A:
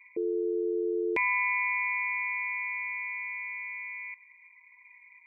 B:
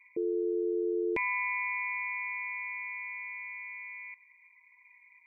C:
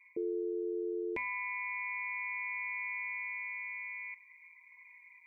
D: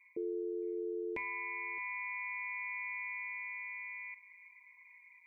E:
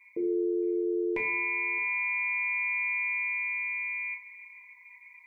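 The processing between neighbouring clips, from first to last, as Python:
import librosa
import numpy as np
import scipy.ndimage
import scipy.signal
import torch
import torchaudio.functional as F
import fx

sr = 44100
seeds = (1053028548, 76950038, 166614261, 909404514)

y1 = fx.low_shelf(x, sr, hz=260.0, db=11.0)
y1 = F.gain(torch.from_numpy(y1), -4.5).numpy()
y2 = fx.rider(y1, sr, range_db=4, speed_s=0.5)
y2 = fx.comb_fb(y2, sr, f0_hz=81.0, decay_s=0.44, harmonics='odd', damping=0.0, mix_pct=70)
y2 = F.gain(torch.from_numpy(y2), 6.0).numpy()
y3 = y2 + 10.0 ** (-18.5 / 20.0) * np.pad(y2, (int(618 * sr / 1000.0), 0))[:len(y2)]
y3 = F.gain(torch.from_numpy(y3), -2.5).numpy()
y4 = fx.room_shoebox(y3, sr, seeds[0], volume_m3=82.0, walls='mixed', distance_m=0.62)
y4 = F.gain(torch.from_numpy(y4), 5.5).numpy()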